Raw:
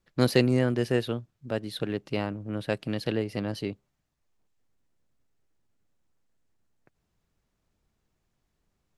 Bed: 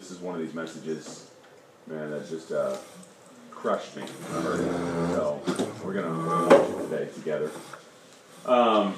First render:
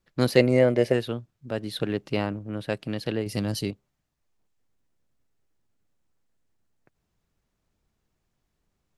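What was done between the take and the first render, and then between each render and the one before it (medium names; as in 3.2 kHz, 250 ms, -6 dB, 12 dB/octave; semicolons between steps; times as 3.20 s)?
0.36–0.92 s: small resonant body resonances 570/2100 Hz, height 12 dB -> 16 dB, ringing for 20 ms; 1.58–2.39 s: gain +3 dB; 3.26–3.71 s: tone controls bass +6 dB, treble +14 dB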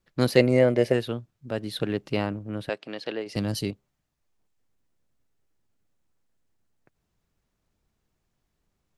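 2.69–3.36 s: band-pass 380–5400 Hz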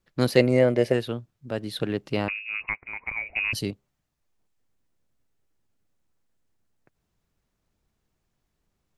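2.28–3.53 s: frequency inversion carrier 2.7 kHz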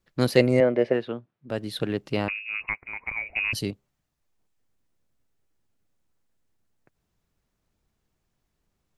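0.60–1.50 s: band-pass 190–2500 Hz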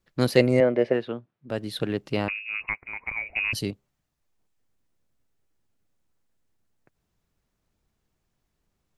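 no audible change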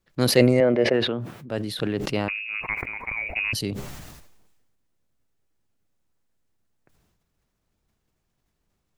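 decay stretcher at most 39 dB/s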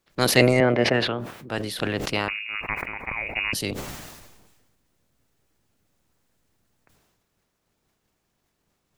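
spectral peaks clipped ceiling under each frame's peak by 14 dB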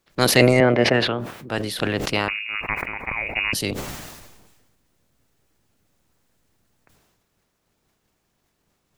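trim +3 dB; peak limiter -2 dBFS, peak gain reduction 2 dB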